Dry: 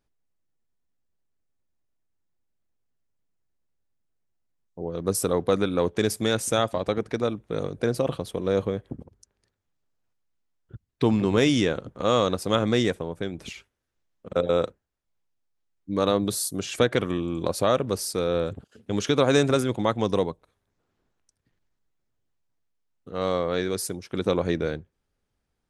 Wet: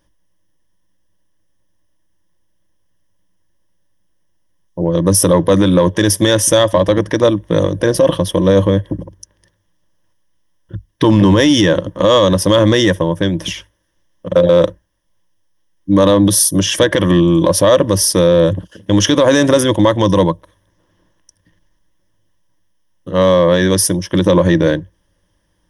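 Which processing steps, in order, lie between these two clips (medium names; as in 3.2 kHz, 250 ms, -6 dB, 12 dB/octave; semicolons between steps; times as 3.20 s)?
rippled EQ curve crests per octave 1.2, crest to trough 13 dB; in parallel at -11 dB: hard clipper -19 dBFS, distortion -10 dB; on the sum: loudness maximiser +13 dB; trim -1 dB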